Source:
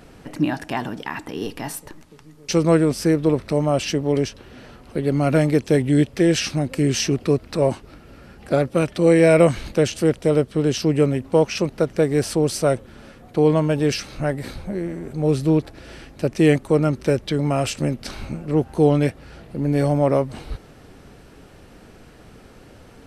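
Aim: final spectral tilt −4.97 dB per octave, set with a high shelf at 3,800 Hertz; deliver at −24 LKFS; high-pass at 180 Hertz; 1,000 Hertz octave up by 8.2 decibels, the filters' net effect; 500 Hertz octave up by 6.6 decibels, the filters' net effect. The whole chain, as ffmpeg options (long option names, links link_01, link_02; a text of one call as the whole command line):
ffmpeg -i in.wav -af "highpass=180,equalizer=frequency=500:width_type=o:gain=5.5,equalizer=frequency=1000:width_type=o:gain=8.5,highshelf=frequency=3800:gain=7.5,volume=-8dB" out.wav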